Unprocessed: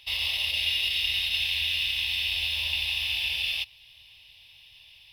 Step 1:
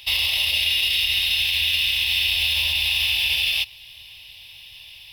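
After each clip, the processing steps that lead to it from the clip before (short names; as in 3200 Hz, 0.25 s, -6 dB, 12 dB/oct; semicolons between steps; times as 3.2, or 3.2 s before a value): limiter -22 dBFS, peak gain reduction 7 dB; high shelf 9400 Hz +8.5 dB; gain +9 dB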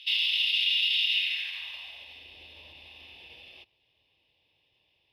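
band-pass sweep 3100 Hz -> 370 Hz, 1.12–2.25; gain -3 dB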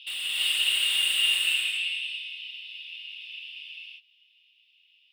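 ladder high-pass 2500 Hz, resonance 65%; soft clip -34.5 dBFS, distortion -6 dB; non-linear reverb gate 0.38 s rising, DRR -7.5 dB; gain +3 dB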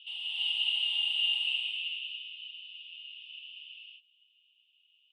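double band-pass 1600 Hz, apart 1.8 oct; gain -2 dB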